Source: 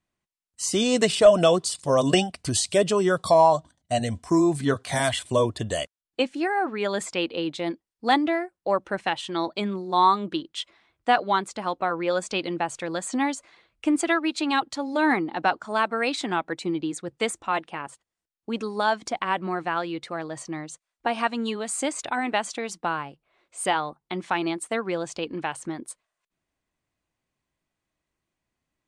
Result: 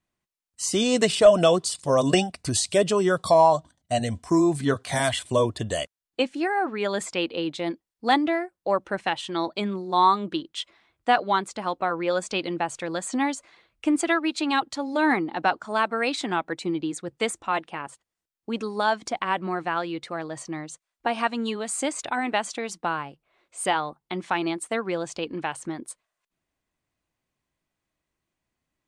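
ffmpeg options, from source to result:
-filter_complex "[0:a]asettb=1/sr,asplit=3[a][b][c];[a]atrim=end=1.904[d];[b]atrim=start=1.9:end=2.65,asetpts=PTS-STARTPTS,afade=t=in:d=0.004:c=qsin,afade=t=out:st=0.746:d=0.004:c=qsin,bandreject=f=3.1k:w=10[e];[c]atrim=start=2.646[f];[d][e]acrossfade=d=0.004:c1=hsin:c2=qsin[g];[g][f]acrossfade=d=0.004:c1=qsin:c2=hsin"

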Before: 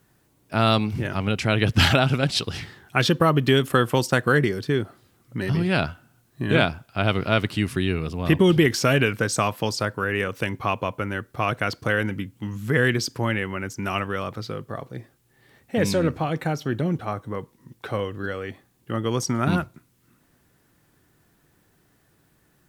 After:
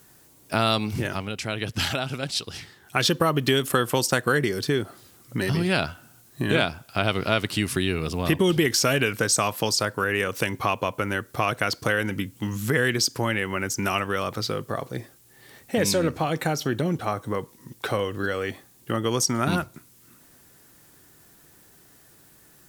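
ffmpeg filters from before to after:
-filter_complex "[0:a]asplit=3[a][b][c];[a]atrim=end=1.28,asetpts=PTS-STARTPTS,afade=t=out:st=0.98:d=0.3:silence=0.251189[d];[b]atrim=start=1.28:end=2.79,asetpts=PTS-STARTPTS,volume=-12dB[e];[c]atrim=start=2.79,asetpts=PTS-STARTPTS,afade=t=in:d=0.3:silence=0.251189[f];[d][e][f]concat=n=3:v=0:a=1,bass=f=250:g=-4,treble=f=4k:g=8,acompressor=threshold=-30dB:ratio=2,volume=6dB"

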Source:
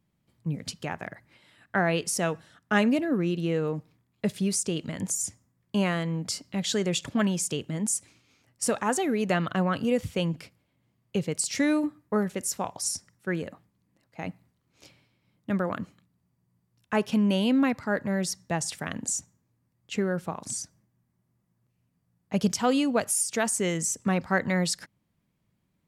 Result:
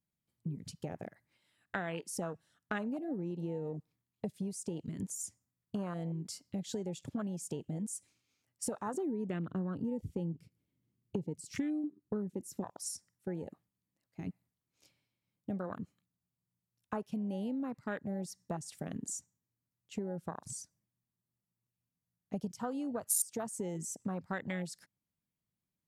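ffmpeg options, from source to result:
-filter_complex "[0:a]asettb=1/sr,asplit=3[a][b][c];[a]atrim=end=8.944[d];[b]atrim=start=8.94:end=12.64,asetpts=PTS-STARTPTS,afade=t=in:d=0.004:c=qsin,afade=t=out:st=3.696:d=0.004:c=qsin,lowshelf=f=490:t=q:w=1.5:g=8.5[e];[c]atrim=start=12.636[f];[d][e]acrossfade=d=0.004:c1=hsin:c2=qsin[g];[g][f]acrossfade=d=0.004:c1=qsin:c2=hsin,afwtdn=0.0355,acompressor=threshold=-34dB:ratio=6,highshelf=f=5.3k:g=11,volume=-1.5dB"

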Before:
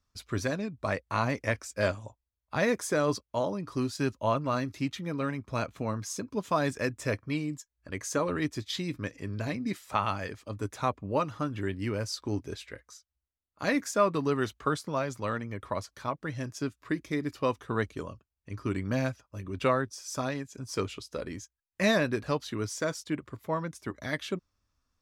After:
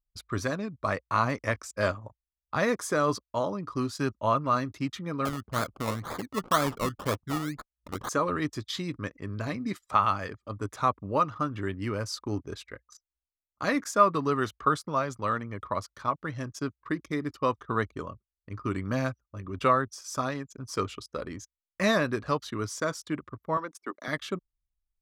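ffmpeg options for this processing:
-filter_complex "[0:a]asettb=1/sr,asplit=3[a][b][c];[a]atrim=end=5.254[d];[b]atrim=start=5.25:end=8.09,asetpts=PTS-STARTPTS,afade=t=in:d=0.004:c=qsin,afade=t=out:st=2.836:d=0.004:c=qsin,acrusher=samples=22:mix=1:aa=0.000001:lfo=1:lforange=13.2:lforate=2[e];[c]atrim=start=8.086[f];[d][e]acrossfade=d=0.004:c1=hsin:c2=qsin[g];[g][f]acrossfade=d=0.004:c1=qsin:c2=hsin,asettb=1/sr,asplit=3[h][i][j];[h]atrim=end=23.574[k];[i]atrim=start=23.57:end=24.08,asetpts=PTS-STARTPTS,afade=t=in:d=0.004:c=qsin,afade=t=out:st=0.506:d=0.004:c=qsin,highpass=f=260:w=0.5412,highpass=f=260:w=1.3066[l];[j]atrim=start=24.076[m];[k][l]acrossfade=d=0.004:c1=hsin:c2=qsin[n];[n][m]acrossfade=d=0.004:c1=qsin:c2=hsin,equalizer=f=2.5k:t=o:w=0.23:g=-2.5,anlmdn=0.01,equalizer=f=1.2k:t=o:w=0.4:g=8.5"

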